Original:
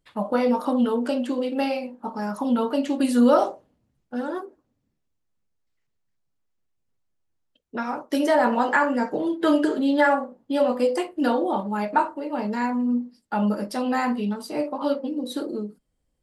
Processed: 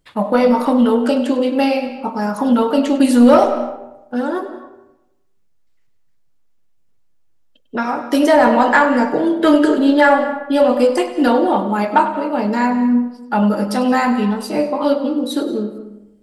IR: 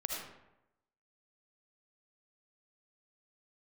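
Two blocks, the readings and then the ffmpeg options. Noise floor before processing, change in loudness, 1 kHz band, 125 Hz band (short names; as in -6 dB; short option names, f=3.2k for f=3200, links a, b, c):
-75 dBFS, +8.5 dB, +8.0 dB, n/a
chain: -filter_complex "[0:a]asoftclip=type=tanh:threshold=-10dB,asplit=2[a][b];[1:a]atrim=start_sample=2205,highshelf=f=9.8k:g=-10,adelay=99[c];[b][c]afir=irnorm=-1:irlink=0,volume=-11.5dB[d];[a][d]amix=inputs=2:normalize=0,volume=8.5dB"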